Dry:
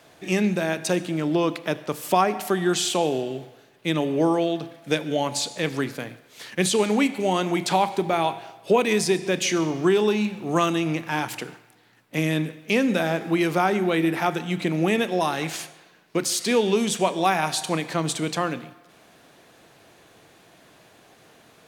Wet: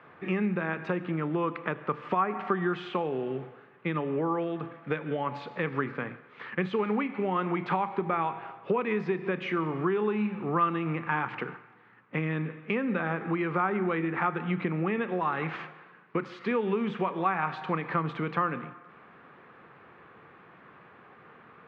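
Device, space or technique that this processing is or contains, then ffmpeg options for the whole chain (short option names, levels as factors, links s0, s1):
bass amplifier: -af "acompressor=threshold=0.0501:ratio=4,highpass=81,equalizer=f=110:t=q:w=4:g=-5,equalizer=f=300:t=q:w=4:g=-6,equalizer=f=650:t=q:w=4:g=-10,equalizer=f=1200:t=q:w=4:g=8,lowpass=f=2200:w=0.5412,lowpass=f=2200:w=1.3066,volume=1.26"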